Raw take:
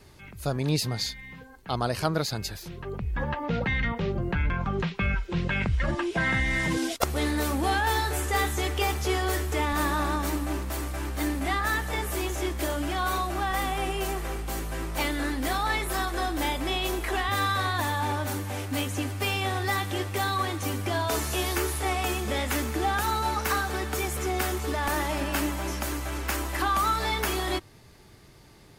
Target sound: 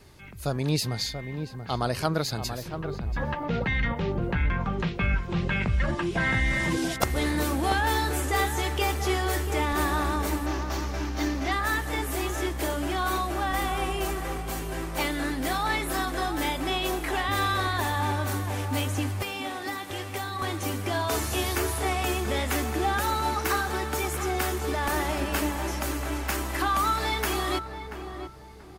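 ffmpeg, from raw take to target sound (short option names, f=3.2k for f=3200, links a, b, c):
-filter_complex "[0:a]asettb=1/sr,asplit=3[a][b][c];[a]atrim=end=10.464[d];[b]atrim=start=10.46:end=11.52,asetpts=PTS-STARTPTS,afade=t=in:d=0.004:c=qsin,afade=t=out:st=1.056:d=0.004:c=qsin,highshelf=f=7.2k:t=q:w=3:g=-7.5[e];[c]atrim=start=11.516[f];[d][e]acrossfade=d=0.004:c1=hsin:c2=qsin[g];[g][f]acrossfade=d=0.004:c1=qsin:c2=hsin,asettb=1/sr,asplit=3[h][i][j];[h]atrim=end=19.224[k];[i]atrim=start=19.22:end=20.42,asetpts=PTS-STARTPTS,afade=t=in:d=0.004:c=qsin,afade=t=out:st=1.196:d=0.004:c=qsin,acrossover=split=110|530[l][m][n];[l]acompressor=threshold=-44dB:ratio=4[o];[m]acompressor=threshold=-41dB:ratio=4[p];[n]acompressor=threshold=-33dB:ratio=4[q];[o][p][q]amix=inputs=3:normalize=0[r];[j]atrim=start=20.416[s];[k][r]acrossfade=d=0.004:c1=hsin:c2=qsin[t];[t][s]acrossfade=d=0.004:c1=qsin:c2=hsin,asplit=2[u][v];[v]adelay=684,lowpass=f=1.2k:p=1,volume=-7.5dB,asplit=2[w][x];[x]adelay=684,lowpass=f=1.2k:p=1,volume=0.34,asplit=2[y][z];[z]adelay=684,lowpass=f=1.2k:p=1,volume=0.34,asplit=2[aa][ab];[ab]adelay=684,lowpass=f=1.2k:p=1,volume=0.34[ac];[u][w][y][aa][ac]amix=inputs=5:normalize=0"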